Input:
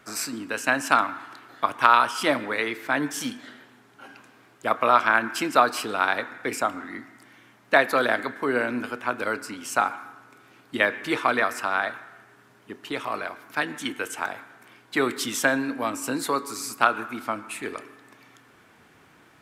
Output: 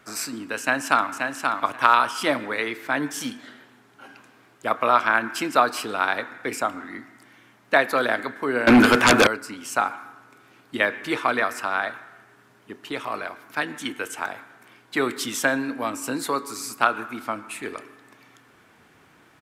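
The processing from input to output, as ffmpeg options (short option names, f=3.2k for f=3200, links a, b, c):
-filter_complex "[0:a]asplit=2[a][b];[b]afade=t=in:st=0.59:d=0.01,afade=t=out:st=1.12:d=0.01,aecho=0:1:530|1060|1590:0.595662|0.0893493|0.0134024[c];[a][c]amix=inputs=2:normalize=0,asettb=1/sr,asplit=3[d][e][f];[d]atrim=end=8.674[g];[e]atrim=start=8.67:end=9.27,asetpts=PTS-STARTPTS,afade=t=in:d=0.004:c=qsin,afade=t=out:st=0.596:d=0.004:c=qsin,aeval=exprs='0.355*sin(PI/2*6.31*val(0)/0.355)':c=same[h];[f]atrim=start=9.266[i];[g][h]acrossfade=d=0.004:c1=hsin:c2=qsin[j];[j][i]acrossfade=d=0.004:c1=qsin:c2=hsin"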